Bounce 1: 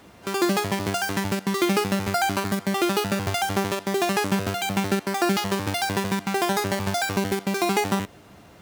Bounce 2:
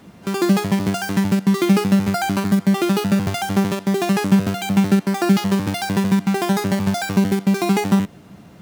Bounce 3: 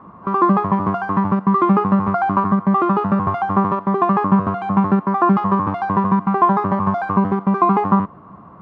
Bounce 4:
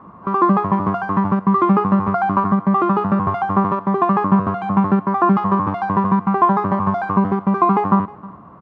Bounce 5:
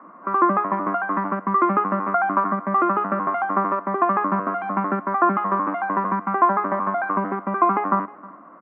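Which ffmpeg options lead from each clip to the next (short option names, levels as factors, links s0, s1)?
-af "equalizer=f=180:t=o:w=1.2:g=11.5"
-af "lowpass=f=1100:t=q:w=13,volume=0.891"
-af "aecho=1:1:313:0.0841"
-af "highpass=f=260:w=0.5412,highpass=f=260:w=1.3066,equalizer=f=290:t=q:w=4:g=4,equalizer=f=420:t=q:w=4:g=-7,equalizer=f=600:t=q:w=4:g=4,equalizer=f=870:t=q:w=4:g=-5,equalizer=f=1400:t=q:w=4:g=5,equalizer=f=2000:t=q:w=4:g=5,lowpass=f=2400:w=0.5412,lowpass=f=2400:w=1.3066,volume=0.794"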